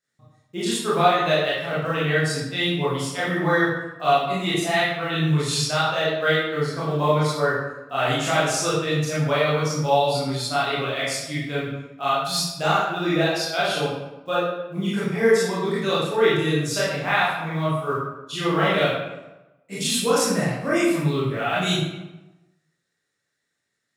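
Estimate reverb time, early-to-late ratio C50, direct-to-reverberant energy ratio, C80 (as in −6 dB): 1.0 s, −0.5 dB, −9.5 dB, 3.0 dB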